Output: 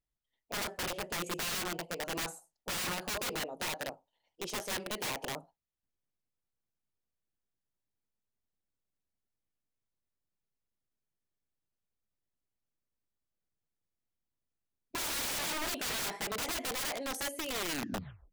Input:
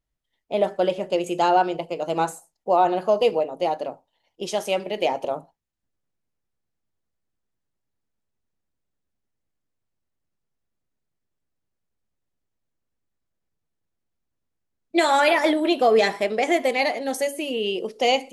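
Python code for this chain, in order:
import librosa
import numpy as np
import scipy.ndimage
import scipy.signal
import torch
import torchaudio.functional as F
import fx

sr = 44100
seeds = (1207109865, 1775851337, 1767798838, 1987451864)

y = fx.tape_stop_end(x, sr, length_s=0.77)
y = (np.mod(10.0 ** (21.5 / 20.0) * y + 1.0, 2.0) - 1.0) / 10.0 ** (21.5 / 20.0)
y = F.gain(torch.from_numpy(y), -9.0).numpy()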